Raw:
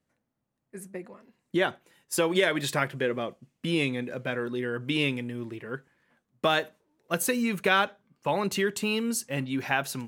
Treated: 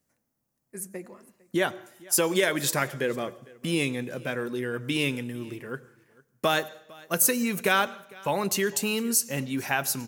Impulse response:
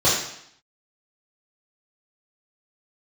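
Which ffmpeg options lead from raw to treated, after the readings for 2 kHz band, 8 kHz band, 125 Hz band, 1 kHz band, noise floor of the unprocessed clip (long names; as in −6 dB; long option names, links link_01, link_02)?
0.0 dB, +8.5 dB, 0.0 dB, 0.0 dB, −81 dBFS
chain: -filter_complex "[0:a]aexciter=amount=2:drive=8.1:freq=5000,aecho=1:1:454:0.0668,asplit=2[link_01][link_02];[1:a]atrim=start_sample=2205,adelay=84[link_03];[link_02][link_03]afir=irnorm=-1:irlink=0,volume=-39dB[link_04];[link_01][link_04]amix=inputs=2:normalize=0"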